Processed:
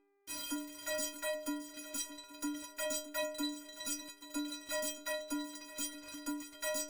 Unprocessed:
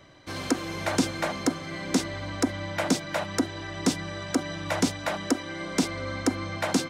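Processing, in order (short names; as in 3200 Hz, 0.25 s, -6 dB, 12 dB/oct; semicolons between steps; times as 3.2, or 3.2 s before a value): reverse delay 0.181 s, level -14 dB; pre-emphasis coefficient 0.8; reverb removal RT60 1.9 s; high shelf 3800 Hz +5 dB; fuzz box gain 46 dB, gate -44 dBFS; buzz 400 Hz, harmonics 6, -38 dBFS -9 dB/oct; metallic resonator 290 Hz, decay 0.67 s, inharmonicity 0.03; swung echo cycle 0.824 s, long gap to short 3:1, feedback 36%, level -15 dB; gain -3 dB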